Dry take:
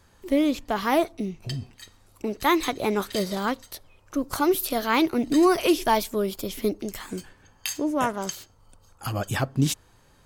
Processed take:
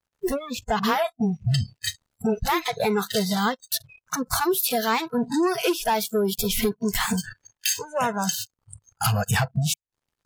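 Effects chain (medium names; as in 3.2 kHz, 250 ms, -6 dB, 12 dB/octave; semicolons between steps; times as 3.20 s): 0.79–2.66 s: phase dispersion highs, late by 49 ms, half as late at 490 Hz; compression 6:1, threshold -35 dBFS, peak gain reduction 18.5 dB; waveshaping leveller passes 5; spectral noise reduction 29 dB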